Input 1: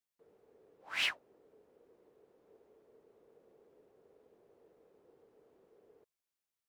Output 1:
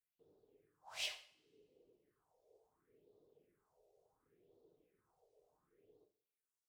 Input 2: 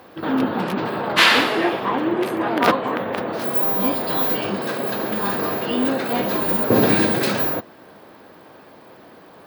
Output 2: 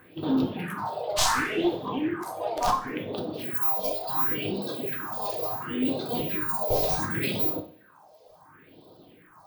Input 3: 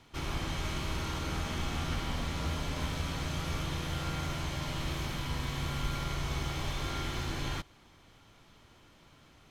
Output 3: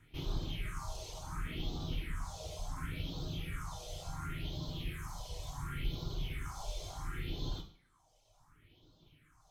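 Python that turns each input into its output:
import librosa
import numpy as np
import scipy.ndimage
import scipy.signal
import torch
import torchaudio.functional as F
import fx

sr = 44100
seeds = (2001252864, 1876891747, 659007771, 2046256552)

y = np.minimum(x, 2.0 * 10.0 ** (-13.0 / 20.0) - x)
y = fx.phaser_stages(y, sr, stages=4, low_hz=250.0, high_hz=1900.0, hz=0.7, feedback_pct=45)
y = fx.dereverb_blind(y, sr, rt60_s=1.3)
y = fx.rev_double_slope(y, sr, seeds[0], early_s=0.46, late_s=1.7, knee_db=-28, drr_db=3.0)
y = y * librosa.db_to_amplitude(-4.5)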